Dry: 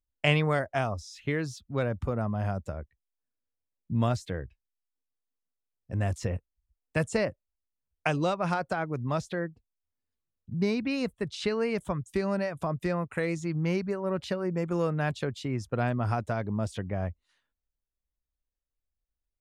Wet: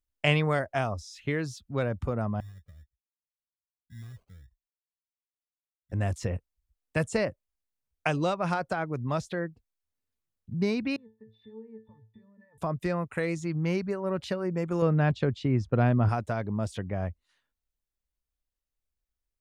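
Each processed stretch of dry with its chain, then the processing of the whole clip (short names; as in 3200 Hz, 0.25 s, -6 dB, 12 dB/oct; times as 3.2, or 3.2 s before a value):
2.4–5.92 passive tone stack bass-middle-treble 10-0-1 + sample-rate reducer 1800 Hz + cascading flanger rising 1.9 Hz
10.96–12.58 LPF 3000 Hz + compressor 10:1, threshold -34 dBFS + octave resonator A, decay 0.27 s
14.82–16.09 LPF 4500 Hz + low shelf 490 Hz +7 dB
whole clip: dry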